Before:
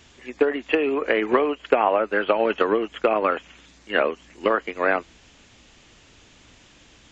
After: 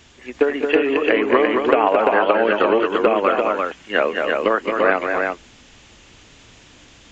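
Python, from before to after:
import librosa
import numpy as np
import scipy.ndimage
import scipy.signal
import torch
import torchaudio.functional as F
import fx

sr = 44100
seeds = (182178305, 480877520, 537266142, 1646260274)

y = fx.echo_multitap(x, sr, ms=(196, 220, 343), db=(-15.5, -5.0, -3.5))
y = y * 10.0 ** (2.5 / 20.0)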